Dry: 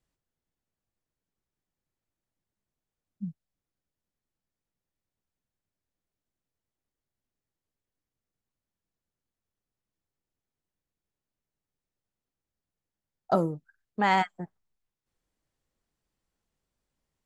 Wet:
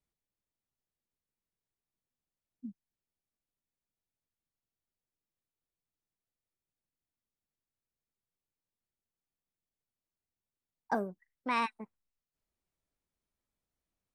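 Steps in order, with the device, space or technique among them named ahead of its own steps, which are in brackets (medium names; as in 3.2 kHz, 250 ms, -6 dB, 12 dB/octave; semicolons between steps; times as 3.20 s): nightcore (tape speed +22%); trim -7.5 dB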